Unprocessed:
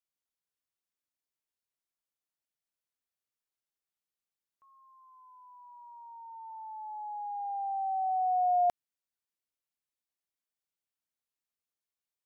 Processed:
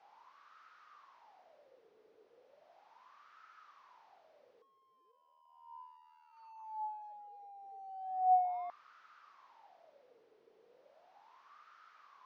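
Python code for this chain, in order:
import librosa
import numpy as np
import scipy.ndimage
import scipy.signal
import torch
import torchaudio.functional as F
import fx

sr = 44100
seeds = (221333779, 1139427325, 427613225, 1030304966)

y = fx.delta_mod(x, sr, bps=32000, step_db=-43.0)
y = fx.ring_mod(y, sr, carrier_hz=39.0, at=(5.11, 6.31), fade=0.02)
y = fx.wah_lfo(y, sr, hz=0.36, low_hz=430.0, high_hz=1300.0, q=9.9)
y = y * 10.0 ** (4.0 / 20.0)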